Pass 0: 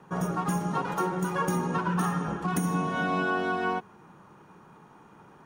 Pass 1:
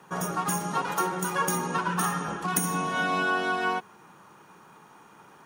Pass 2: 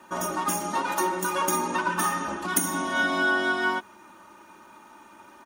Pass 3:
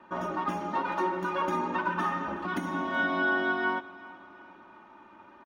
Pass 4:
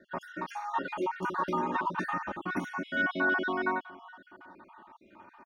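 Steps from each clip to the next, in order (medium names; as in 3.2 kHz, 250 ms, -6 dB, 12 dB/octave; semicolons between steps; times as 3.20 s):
tilt EQ +2.5 dB/octave; trim +2 dB
comb 3.3 ms, depth 90%
distance through air 320 m; feedback delay 374 ms, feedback 48%, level -20 dB; trim -1.5 dB
random holes in the spectrogram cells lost 44%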